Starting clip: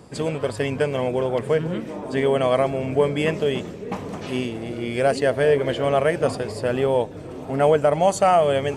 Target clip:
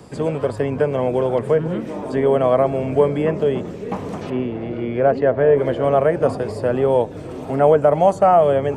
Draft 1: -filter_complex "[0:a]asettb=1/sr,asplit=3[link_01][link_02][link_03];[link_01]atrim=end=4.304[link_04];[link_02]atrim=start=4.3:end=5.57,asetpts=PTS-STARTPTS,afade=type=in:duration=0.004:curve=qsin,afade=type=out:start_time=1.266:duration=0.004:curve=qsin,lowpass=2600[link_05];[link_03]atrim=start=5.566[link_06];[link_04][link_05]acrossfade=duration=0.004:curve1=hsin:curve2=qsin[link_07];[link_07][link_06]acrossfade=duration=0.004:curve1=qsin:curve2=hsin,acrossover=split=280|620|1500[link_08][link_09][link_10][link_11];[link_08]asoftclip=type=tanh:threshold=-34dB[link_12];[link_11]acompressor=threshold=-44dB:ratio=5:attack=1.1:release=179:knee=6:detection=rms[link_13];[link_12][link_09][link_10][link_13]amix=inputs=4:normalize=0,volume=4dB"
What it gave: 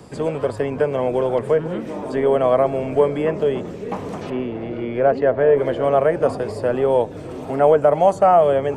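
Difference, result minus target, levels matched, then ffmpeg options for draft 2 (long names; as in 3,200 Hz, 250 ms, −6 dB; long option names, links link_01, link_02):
soft clipping: distortion +11 dB
-filter_complex "[0:a]asettb=1/sr,asplit=3[link_01][link_02][link_03];[link_01]atrim=end=4.304[link_04];[link_02]atrim=start=4.3:end=5.57,asetpts=PTS-STARTPTS,afade=type=in:duration=0.004:curve=qsin,afade=type=out:start_time=1.266:duration=0.004:curve=qsin,lowpass=2600[link_05];[link_03]atrim=start=5.566[link_06];[link_04][link_05]acrossfade=duration=0.004:curve1=hsin:curve2=qsin[link_07];[link_07][link_06]acrossfade=duration=0.004:curve1=qsin:curve2=hsin,acrossover=split=280|620|1500[link_08][link_09][link_10][link_11];[link_08]asoftclip=type=tanh:threshold=-23.5dB[link_12];[link_11]acompressor=threshold=-44dB:ratio=5:attack=1.1:release=179:knee=6:detection=rms[link_13];[link_12][link_09][link_10][link_13]amix=inputs=4:normalize=0,volume=4dB"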